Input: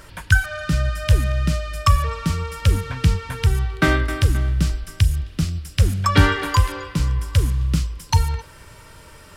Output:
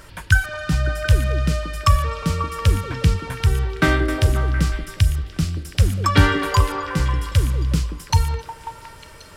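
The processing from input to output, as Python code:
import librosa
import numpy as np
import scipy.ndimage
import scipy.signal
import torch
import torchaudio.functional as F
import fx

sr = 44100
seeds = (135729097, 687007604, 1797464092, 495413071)

y = fx.echo_stepped(x, sr, ms=180, hz=380.0, octaves=0.7, feedback_pct=70, wet_db=-2)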